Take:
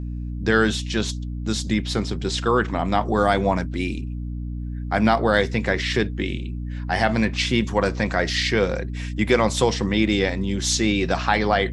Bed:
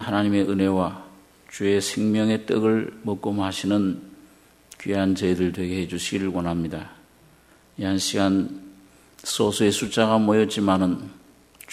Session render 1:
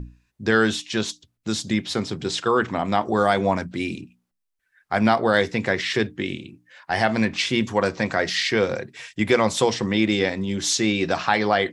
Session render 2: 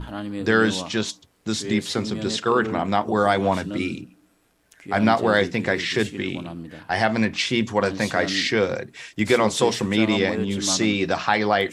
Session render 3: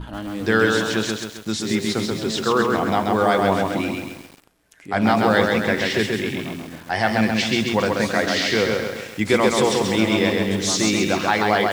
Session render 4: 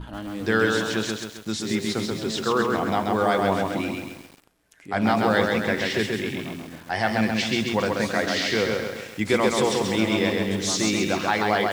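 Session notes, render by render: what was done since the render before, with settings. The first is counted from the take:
notches 60/120/180/240/300 Hz
add bed -10 dB
lo-fi delay 0.133 s, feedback 55%, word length 7-bit, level -3 dB
gain -3.5 dB

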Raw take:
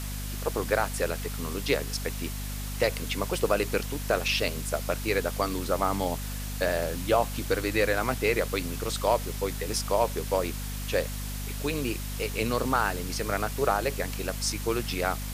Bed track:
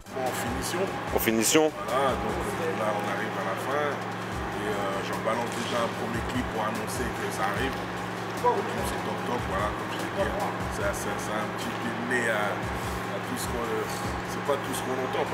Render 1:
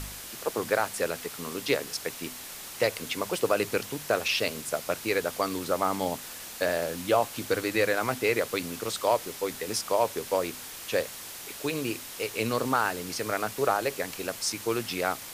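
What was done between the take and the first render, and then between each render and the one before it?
de-hum 50 Hz, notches 5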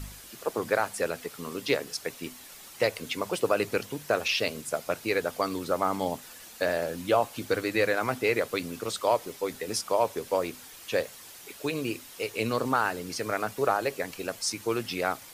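denoiser 8 dB, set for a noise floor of -42 dBFS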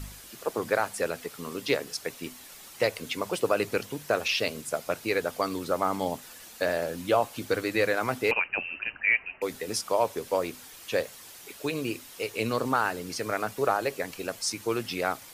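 8.31–9.42 inverted band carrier 2900 Hz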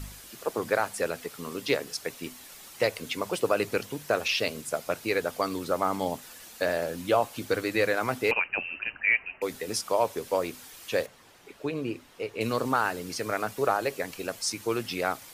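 11.06–12.41 LPF 1500 Hz 6 dB/oct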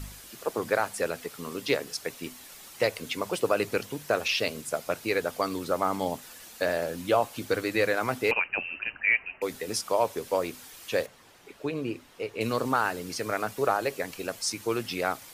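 nothing audible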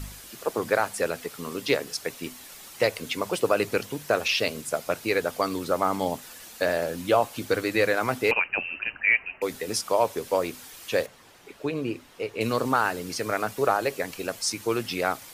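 gain +2.5 dB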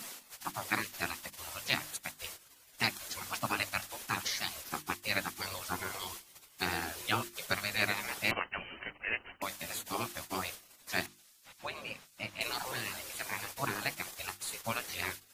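spectral gate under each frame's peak -15 dB weak; notches 50/100/150/200/250/300/350 Hz

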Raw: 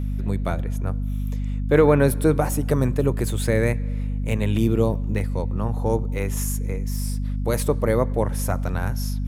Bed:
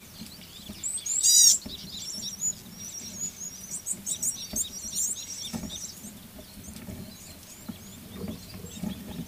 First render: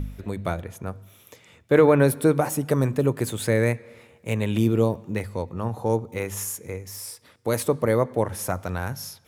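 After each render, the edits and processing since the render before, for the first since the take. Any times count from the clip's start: de-hum 50 Hz, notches 5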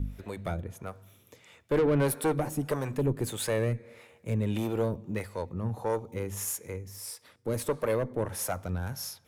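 tube stage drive 16 dB, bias 0.35; harmonic tremolo 1.6 Hz, depth 70%, crossover 440 Hz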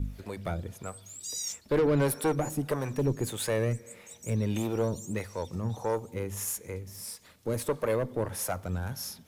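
add bed -18 dB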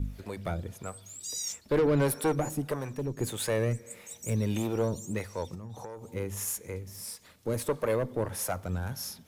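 2.46–3.17 fade out linear, to -8 dB; 3.9–4.56 high shelf 6300 Hz +7 dB; 5.54–6.13 compressor 16:1, threshold -37 dBFS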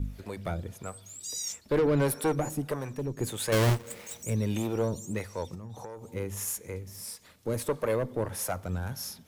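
3.52–4.23 half-waves squared off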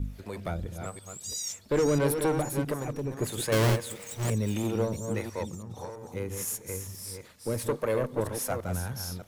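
reverse delay 0.331 s, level -6.5 dB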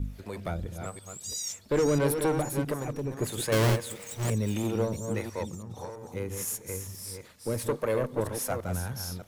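nothing audible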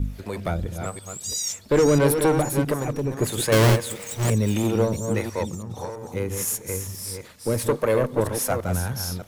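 gain +7 dB

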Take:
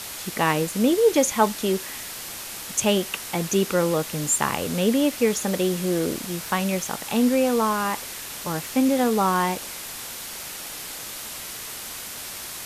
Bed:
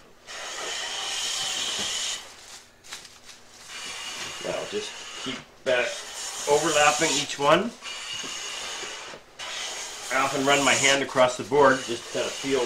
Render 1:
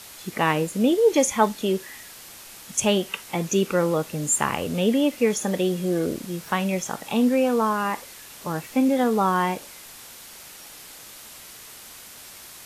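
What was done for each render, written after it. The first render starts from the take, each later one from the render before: noise print and reduce 8 dB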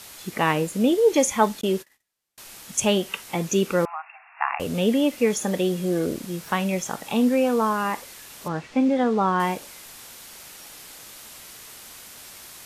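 1.61–2.38 gate -38 dBFS, range -39 dB; 3.85–4.6 brick-wall FIR band-pass 660–2800 Hz; 8.48–9.4 air absorption 110 m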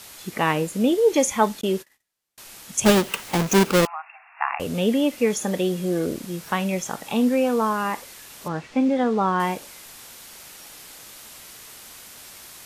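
2.85–3.87 half-waves squared off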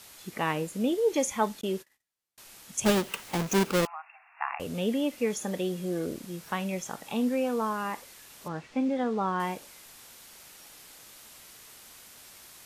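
gain -7.5 dB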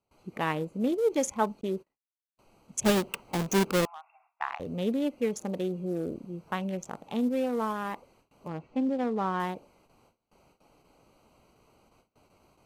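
Wiener smoothing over 25 samples; gate with hold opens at -53 dBFS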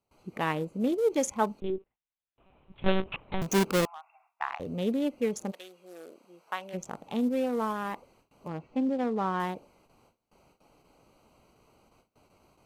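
1.6–3.42 monotone LPC vocoder at 8 kHz 190 Hz; 5.5–6.73 HPF 1300 Hz -> 560 Hz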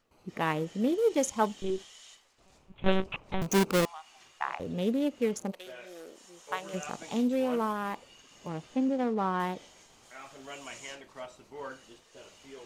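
add bed -23.5 dB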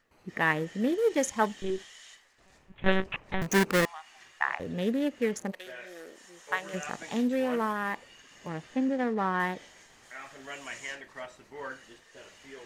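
bell 1800 Hz +12 dB 0.41 oct

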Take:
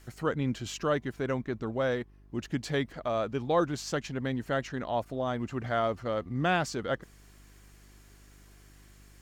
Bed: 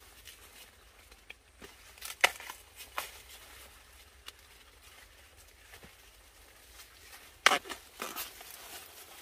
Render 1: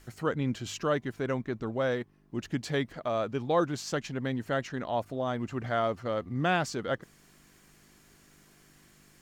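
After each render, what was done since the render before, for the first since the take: de-hum 50 Hz, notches 2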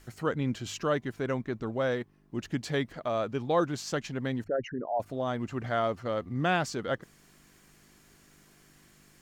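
4.44–5 formant sharpening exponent 3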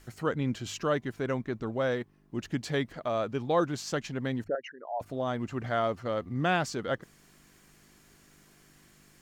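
4.55–5.01 BPF 760–5700 Hz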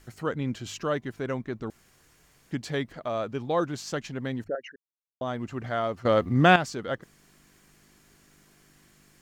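1.7–2.51 room tone; 4.76–5.21 mute; 6.05–6.56 gain +9.5 dB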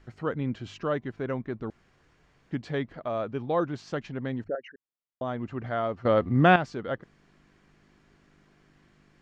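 LPF 4600 Hz 12 dB/oct; high shelf 3000 Hz -8.5 dB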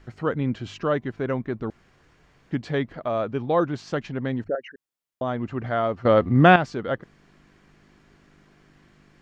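gain +5 dB; limiter -2 dBFS, peak gain reduction 1 dB

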